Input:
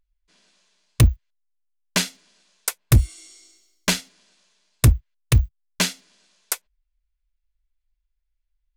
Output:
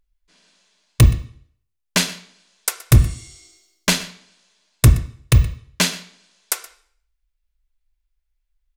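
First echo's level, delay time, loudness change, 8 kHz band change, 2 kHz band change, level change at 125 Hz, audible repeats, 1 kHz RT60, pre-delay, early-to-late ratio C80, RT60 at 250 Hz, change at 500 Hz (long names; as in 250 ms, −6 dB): −20.0 dB, 123 ms, +3.5 dB, +3.0 dB, +3.5 dB, +3.5 dB, 1, 0.55 s, 19 ms, 15.0 dB, 0.55 s, +3.5 dB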